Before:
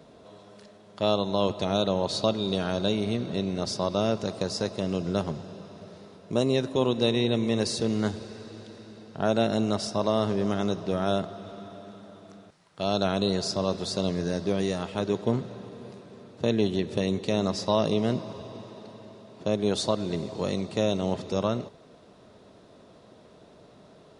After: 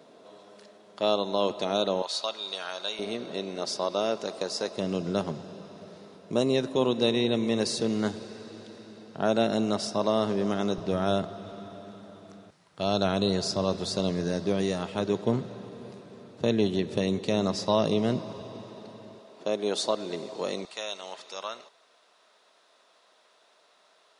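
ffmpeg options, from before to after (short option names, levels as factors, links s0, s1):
-af "asetnsamples=n=441:p=0,asendcmd='2.02 highpass f 950;2.99 highpass f 350;4.77 highpass f 150;10.78 highpass f 44;13.99 highpass f 96;19.19 highpass f 340;20.65 highpass f 1100',highpass=260"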